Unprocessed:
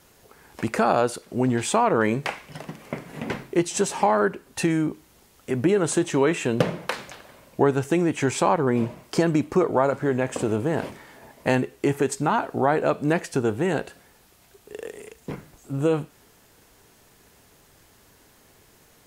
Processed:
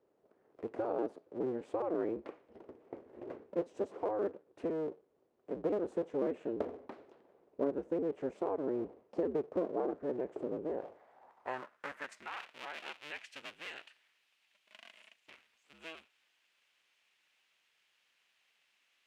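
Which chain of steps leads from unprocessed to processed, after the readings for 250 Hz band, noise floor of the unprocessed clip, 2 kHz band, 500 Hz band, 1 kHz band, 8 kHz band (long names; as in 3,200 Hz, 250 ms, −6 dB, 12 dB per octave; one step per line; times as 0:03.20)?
−16.0 dB, −57 dBFS, −18.5 dB, −13.0 dB, −19.5 dB, below −30 dB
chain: sub-harmonics by changed cycles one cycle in 2, inverted
band-pass filter sweep 420 Hz → 2,700 Hz, 0:10.62–0:12.46
level −8.5 dB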